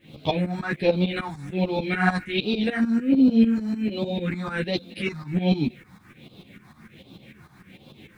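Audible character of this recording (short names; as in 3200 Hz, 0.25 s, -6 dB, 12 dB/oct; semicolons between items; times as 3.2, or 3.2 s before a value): phasing stages 4, 1.3 Hz, lowest notch 460–1800 Hz; a quantiser's noise floor 12-bit, dither none; tremolo saw up 6.7 Hz, depth 85%; a shimmering, thickened sound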